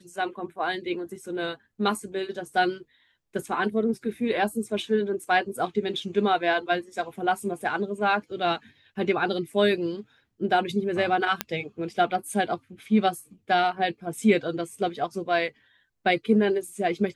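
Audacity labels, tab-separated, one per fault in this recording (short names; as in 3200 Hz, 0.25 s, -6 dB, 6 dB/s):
11.410000	11.410000	pop -7 dBFS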